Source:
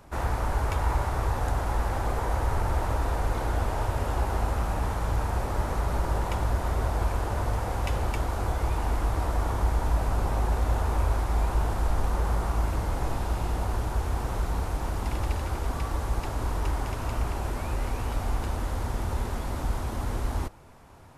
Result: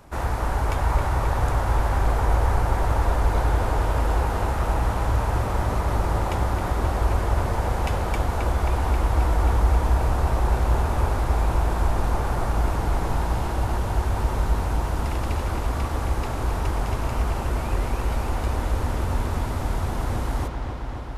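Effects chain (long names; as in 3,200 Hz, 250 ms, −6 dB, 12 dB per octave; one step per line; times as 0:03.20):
delay with a low-pass on its return 267 ms, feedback 80%, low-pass 4,000 Hz, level −6 dB
level +2.5 dB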